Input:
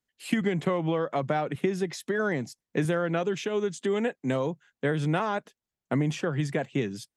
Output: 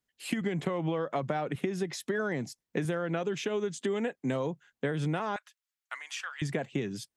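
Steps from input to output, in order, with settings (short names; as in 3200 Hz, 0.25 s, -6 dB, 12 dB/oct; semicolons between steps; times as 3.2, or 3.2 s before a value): 5.36–6.42 HPF 1200 Hz 24 dB/oct; compressor, threshold -27 dBFS, peak gain reduction 8 dB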